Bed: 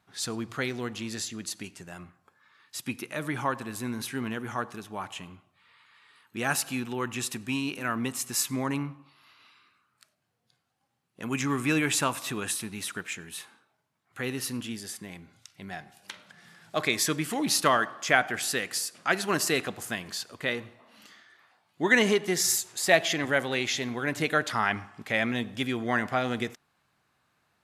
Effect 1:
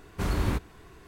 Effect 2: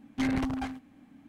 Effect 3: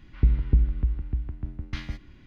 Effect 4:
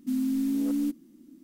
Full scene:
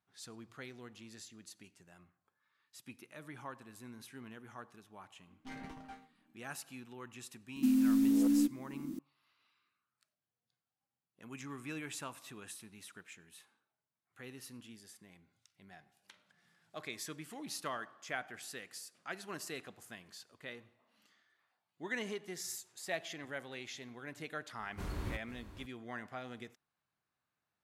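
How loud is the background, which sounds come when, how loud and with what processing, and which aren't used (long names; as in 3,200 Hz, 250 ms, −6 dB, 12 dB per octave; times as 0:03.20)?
bed −17.5 dB
0:05.27: mix in 2 −0.5 dB + resonators tuned to a chord D#3 major, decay 0.28 s
0:07.56: mix in 4 −1 dB + multiband upward and downward compressor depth 70%
0:24.59: mix in 1 −13 dB + single-tap delay 498 ms −14 dB
not used: 3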